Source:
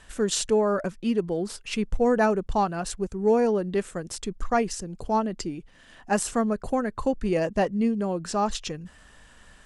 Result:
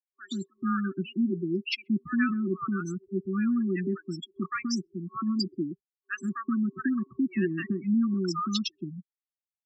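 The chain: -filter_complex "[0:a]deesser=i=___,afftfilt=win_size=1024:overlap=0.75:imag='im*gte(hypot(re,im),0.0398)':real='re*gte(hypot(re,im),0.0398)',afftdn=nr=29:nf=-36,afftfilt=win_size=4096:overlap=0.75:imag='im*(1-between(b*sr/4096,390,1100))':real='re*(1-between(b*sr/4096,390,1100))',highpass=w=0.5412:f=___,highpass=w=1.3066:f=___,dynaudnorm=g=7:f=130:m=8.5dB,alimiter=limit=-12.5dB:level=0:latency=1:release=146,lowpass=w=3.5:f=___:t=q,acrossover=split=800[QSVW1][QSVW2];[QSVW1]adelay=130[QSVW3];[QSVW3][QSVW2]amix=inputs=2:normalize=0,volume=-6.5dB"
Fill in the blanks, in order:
0.6, 160, 160, 5000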